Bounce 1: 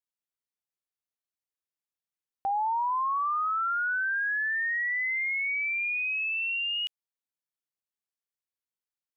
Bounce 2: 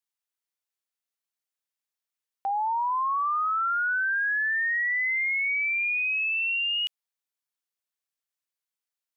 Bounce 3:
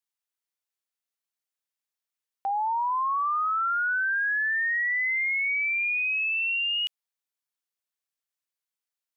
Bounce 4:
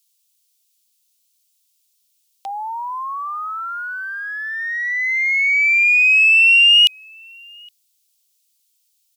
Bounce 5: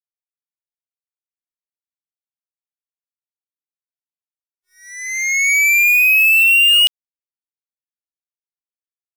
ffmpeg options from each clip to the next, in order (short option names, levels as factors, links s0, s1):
-af "highpass=f=790:p=1,volume=1.5"
-af anull
-filter_complex "[0:a]acrossover=split=530[s0][s1];[s1]aexciter=amount=8:drive=7.8:freq=2500[s2];[s0][s2]amix=inputs=2:normalize=0,asplit=2[s3][s4];[s4]adelay=816.3,volume=0.0631,highshelf=f=4000:g=-18.4[s5];[s3][s5]amix=inputs=2:normalize=0"
-af "acrusher=bits=2:mix=0:aa=0.5"